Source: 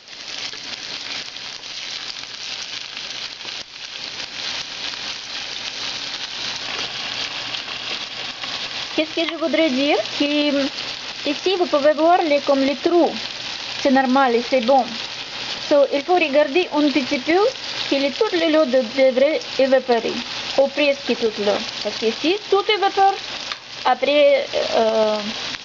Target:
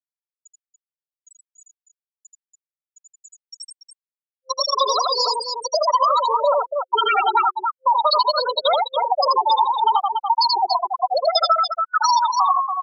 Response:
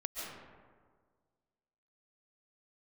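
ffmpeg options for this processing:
-filter_complex "[0:a]asetrate=88200,aresample=44100,acrossover=split=130[link_01][link_02];[link_02]dynaudnorm=framelen=120:gausssize=5:maxgain=9dB[link_03];[link_01][link_03]amix=inputs=2:normalize=0,asetrate=37084,aresample=44100,atempo=1.18921,crystalizer=i=4:c=0,asoftclip=type=tanh:threshold=-8dB,equalizer=frequency=68:width_type=o:width=2.3:gain=9.5,afftfilt=real='re*gte(hypot(re,im),1)':imag='im*gte(hypot(re,im),1)':win_size=1024:overlap=0.75,bandreject=frequency=2000:width=12,aecho=1:1:81.63|285.7:0.708|0.398,acompressor=threshold=-13dB:ratio=6,superequalizer=7b=0.355:11b=0.631:15b=0.251"

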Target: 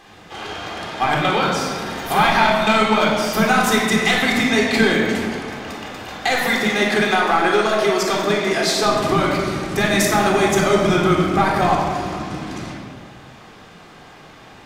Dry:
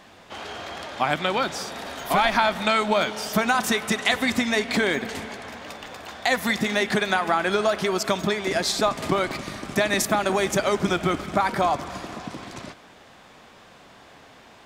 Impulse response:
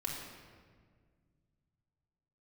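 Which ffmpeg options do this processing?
-filter_complex "[0:a]asettb=1/sr,asplit=3[link_01][link_02][link_03];[link_01]atrim=end=6.374[link_04];[link_02]atrim=start=6.37:end=8.83,asetpts=PTS-STARTPTS,afade=type=in:duration=0.004:curve=qsin,afade=type=out:start_time=2.456:duration=0.004:curve=qsin,highpass=230[link_05];[link_03]atrim=start=8.826[link_06];[link_04][link_05]acrossfade=duration=0.004:curve1=hsin:curve2=qsin[link_07];[link_07][link_06]acrossfade=duration=0.004:curve1=qsin:curve2=hsin,aeval=exprs='clip(val(0),-1,0.15)':channel_layout=same[link_08];[1:a]atrim=start_sample=2205,asetrate=48510,aresample=44100[link_09];[link_08][link_09]afir=irnorm=-1:irlink=0,volume=5dB"

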